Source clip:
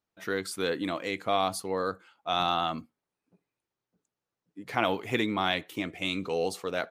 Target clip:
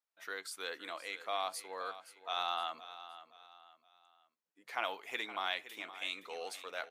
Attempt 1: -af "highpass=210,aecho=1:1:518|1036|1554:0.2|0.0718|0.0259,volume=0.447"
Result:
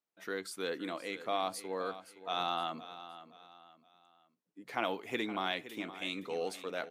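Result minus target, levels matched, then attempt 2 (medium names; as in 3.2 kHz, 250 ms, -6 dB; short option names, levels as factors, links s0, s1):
250 Hz band +13.0 dB
-af "highpass=760,aecho=1:1:518|1036|1554:0.2|0.0718|0.0259,volume=0.447"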